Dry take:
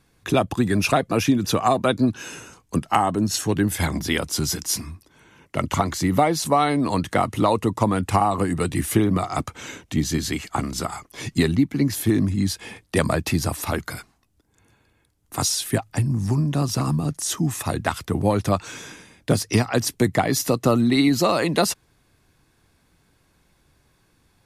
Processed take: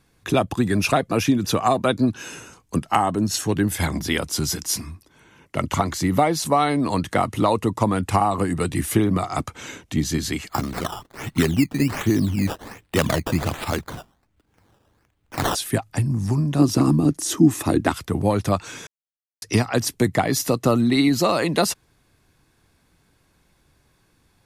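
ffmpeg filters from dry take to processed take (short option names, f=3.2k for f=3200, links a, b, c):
-filter_complex "[0:a]asplit=3[a][b][c];[a]afade=t=out:st=10.48:d=0.02[d];[b]acrusher=samples=14:mix=1:aa=0.000001:lfo=1:lforange=14:lforate=1.3,afade=t=in:st=10.48:d=0.02,afade=t=out:st=15.54:d=0.02[e];[c]afade=t=in:st=15.54:d=0.02[f];[d][e][f]amix=inputs=3:normalize=0,asettb=1/sr,asplit=3[g][h][i];[g]atrim=end=16.594[j];[h]atrim=start=16.59:end=17.93,asetpts=PTS-STARTPTS,afade=t=in:d=0.004:c=qsin,afade=t=out:st=1.336:d=0.004:c=qsin,equalizer=f=310:t=o:w=0.83:g=14[k];[i]atrim=start=17.926[l];[j][k]acrossfade=d=0.004:c1=hsin:c2=qsin[m];[m][l]acrossfade=d=0.004:c1=qsin:c2=hsin,asplit=3[n][o][p];[n]atrim=end=18.87,asetpts=PTS-STARTPTS,afade=t=out:st=18.866:d=0.004:c=hsin[q];[o]atrim=start=18.87:end=19.42,asetpts=PTS-STARTPTS,volume=0[r];[p]atrim=start=19.42,asetpts=PTS-STARTPTS,afade=t=in:d=0.004:c=hsin[s];[q][r][s]concat=n=3:v=0:a=1"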